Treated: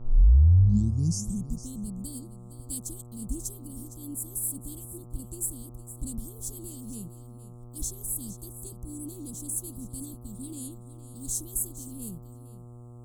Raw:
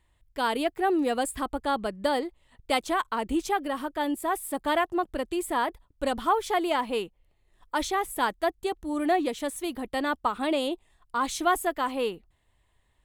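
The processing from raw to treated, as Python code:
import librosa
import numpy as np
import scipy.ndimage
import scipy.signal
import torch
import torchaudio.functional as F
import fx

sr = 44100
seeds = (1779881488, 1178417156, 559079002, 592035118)

p1 = fx.tape_start_head(x, sr, length_s=1.83)
p2 = scipy.signal.sosfilt(scipy.signal.ellip(3, 1.0, 70, [170.0, 7500.0], 'bandstop', fs=sr, output='sos'), p1)
p3 = fx.dmg_buzz(p2, sr, base_hz=120.0, harmonics=11, level_db=-54.0, tilt_db=-9, odd_only=False)
p4 = p3 + fx.echo_single(p3, sr, ms=461, db=-14.0, dry=0)
y = p4 * 10.0 ** (8.5 / 20.0)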